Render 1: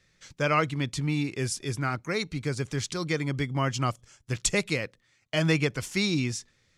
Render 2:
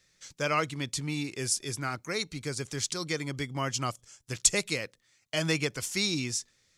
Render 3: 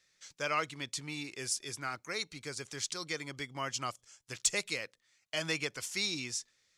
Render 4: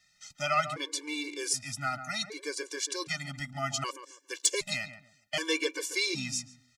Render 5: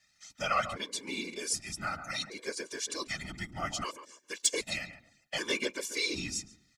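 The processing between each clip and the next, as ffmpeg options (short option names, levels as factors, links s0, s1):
-af "bass=f=250:g=-4,treble=f=4000:g=9,volume=0.668"
-filter_complex "[0:a]asplit=2[s0][s1];[s1]highpass=f=720:p=1,volume=2.82,asoftclip=type=tanh:threshold=0.562[s2];[s0][s2]amix=inputs=2:normalize=0,lowpass=f=7200:p=1,volume=0.501,volume=0.398"
-filter_complex "[0:a]asplit=2[s0][s1];[s1]adelay=140,lowpass=f=1100:p=1,volume=0.398,asplit=2[s2][s3];[s3]adelay=140,lowpass=f=1100:p=1,volume=0.29,asplit=2[s4][s5];[s5]adelay=140,lowpass=f=1100:p=1,volume=0.29[s6];[s0][s2][s4][s6]amix=inputs=4:normalize=0,afftfilt=real='re*gt(sin(2*PI*0.65*pts/sr)*(1-2*mod(floor(b*sr/1024/300),2)),0)':imag='im*gt(sin(2*PI*0.65*pts/sr)*(1-2*mod(floor(b*sr/1024/300),2)),0)':win_size=1024:overlap=0.75,volume=2.24"
-af "afftfilt=real='hypot(re,im)*cos(2*PI*random(0))':imag='hypot(re,im)*sin(2*PI*random(1))':win_size=512:overlap=0.75,volume=1.58"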